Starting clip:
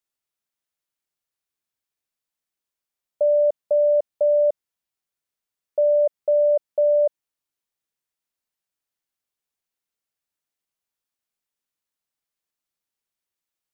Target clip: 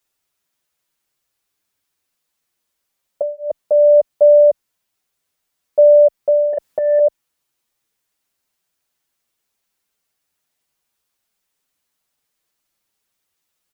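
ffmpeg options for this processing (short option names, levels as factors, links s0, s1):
-filter_complex "[0:a]asettb=1/sr,asplit=3[s0][s1][s2];[s0]atrim=end=6.534[s3];[s1]atrim=start=6.53:end=6.99,asetpts=PTS-STARTPTS,afade=t=in:d=0.004:c=qsin,afade=t=out:st=0.456:d=0.004:c=qsin,acontrast=85[s4];[s2]atrim=start=6.986[s5];[s3][s4]acrossfade=d=0.004:c1=hsin:c2=qsin[s6];[s6][s5]acrossfade=d=0.004:c1=qsin:c2=hsin,alimiter=level_in=8.41:limit=0.891:release=50:level=0:latency=1,asplit=2[s7][s8];[s8]adelay=7.2,afreqshift=-0.61[s9];[s7][s9]amix=inputs=2:normalize=1,volume=0.668"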